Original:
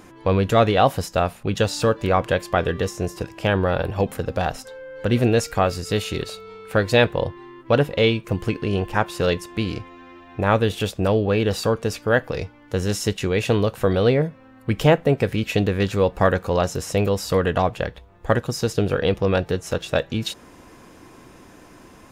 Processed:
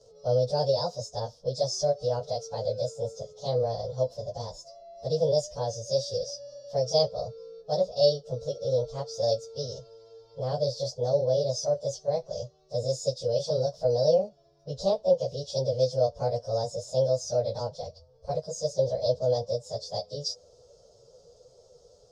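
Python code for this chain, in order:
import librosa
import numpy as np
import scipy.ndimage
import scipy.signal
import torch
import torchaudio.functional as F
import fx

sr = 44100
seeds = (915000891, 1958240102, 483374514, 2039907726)

y = fx.pitch_bins(x, sr, semitones=4.5)
y = fx.curve_eq(y, sr, hz=(130.0, 320.0, 500.0, 770.0, 2200.0, 5300.0, 14000.0), db=(0, -20, 14, -5, -29, 15, -29))
y = y * 10.0 ** (-8.0 / 20.0)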